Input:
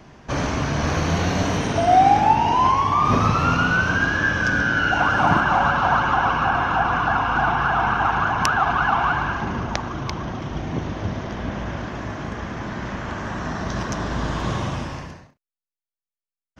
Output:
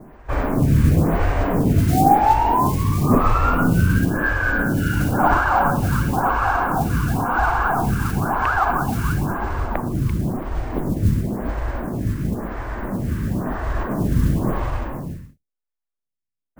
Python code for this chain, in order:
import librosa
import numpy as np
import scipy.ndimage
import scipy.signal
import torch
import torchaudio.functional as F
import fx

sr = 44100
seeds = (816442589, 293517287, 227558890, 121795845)

y = fx.octave_divider(x, sr, octaves=2, level_db=-5.0)
y = scipy.signal.sosfilt(scipy.signal.butter(4, 2500.0, 'lowpass', fs=sr, output='sos'), y)
y = fx.mod_noise(y, sr, seeds[0], snr_db=17)
y = fx.low_shelf(y, sr, hz=490.0, db=11.5)
y = fx.stagger_phaser(y, sr, hz=0.97)
y = y * librosa.db_to_amplitude(-1.0)